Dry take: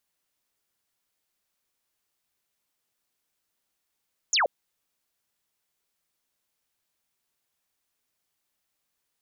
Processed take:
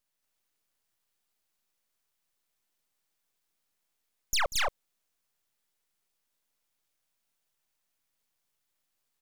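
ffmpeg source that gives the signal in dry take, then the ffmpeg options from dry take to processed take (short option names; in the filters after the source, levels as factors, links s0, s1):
-f lavfi -i "aevalsrc='0.106*clip(t/0.002,0,1)*clip((0.13-t)/0.002,0,1)*sin(2*PI*7400*0.13/log(490/7400)*(exp(log(490/7400)*t/0.13)-1))':d=0.13:s=44100"
-af "aecho=1:1:189.5|224.5:0.251|0.891,aeval=exprs='max(val(0),0)':c=same"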